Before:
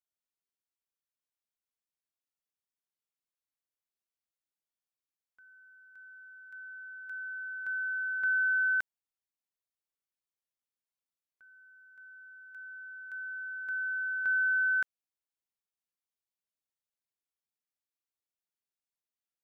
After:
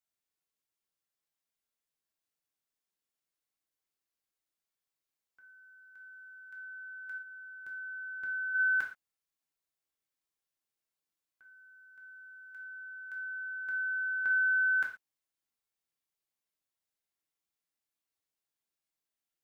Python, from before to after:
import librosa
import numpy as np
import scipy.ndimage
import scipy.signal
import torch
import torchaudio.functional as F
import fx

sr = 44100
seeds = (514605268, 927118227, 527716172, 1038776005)

y = fx.peak_eq(x, sr, hz=fx.line((7.17, 1400.0), (8.54, 1100.0)), db=-8.5, octaves=2.5, at=(7.17, 8.54), fade=0.02)
y = fx.rev_gated(y, sr, seeds[0], gate_ms=150, shape='falling', drr_db=0.5)